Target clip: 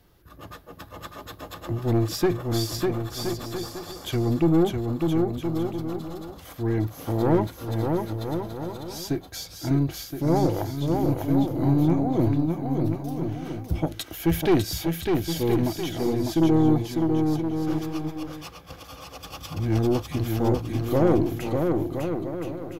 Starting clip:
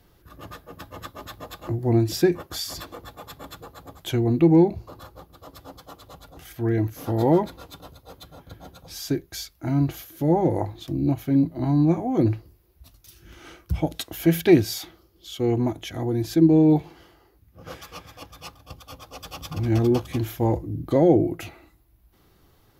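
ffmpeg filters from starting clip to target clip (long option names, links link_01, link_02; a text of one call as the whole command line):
ffmpeg -i in.wav -af "aeval=exprs='(tanh(5.01*val(0)+0.4)-tanh(0.4))/5.01':channel_layout=same,aecho=1:1:600|1020|1314|1520|1664:0.631|0.398|0.251|0.158|0.1" out.wav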